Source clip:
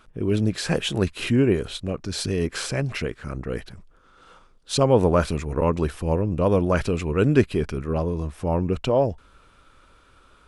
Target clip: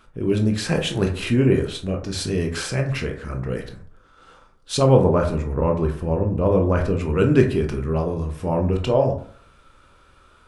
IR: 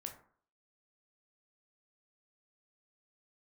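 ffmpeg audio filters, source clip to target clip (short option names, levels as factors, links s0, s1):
-filter_complex "[0:a]asettb=1/sr,asplit=3[s0][s1][s2];[s0]atrim=end=4.974[s3];[s1]atrim=start=4.97:end=7.01,asetpts=PTS-STARTPTS,afade=t=in:d=0.004:c=qsin,afade=t=out:st=2.036:d=0.004:c=qsin,highshelf=f=2100:g=-10.5[s4];[s2]atrim=start=7.006[s5];[s3][s4]acrossfade=d=0.004:c1=hsin:c2=qsin[s6];[s6][s5]acrossfade=d=0.004:c1=qsin:c2=hsin[s7];[1:a]atrim=start_sample=2205[s8];[s7][s8]afir=irnorm=-1:irlink=0,volume=1.78"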